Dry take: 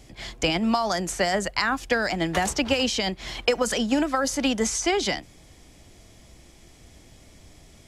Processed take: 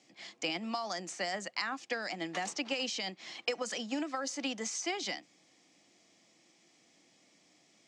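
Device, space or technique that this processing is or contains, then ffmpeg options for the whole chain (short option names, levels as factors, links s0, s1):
television speaker: -af "highpass=f=220:w=0.5412,highpass=f=220:w=1.3066,equalizer=f=240:t=q:w=4:g=-6,equalizer=f=410:t=q:w=4:g=-9,equalizer=f=610:t=q:w=4:g=-5,equalizer=f=950:t=q:w=4:g=-5,equalizer=f=1500:t=q:w=4:g=-6,equalizer=f=3400:t=q:w=4:g=-3,lowpass=f=7300:w=0.5412,lowpass=f=7300:w=1.3066,volume=0.376"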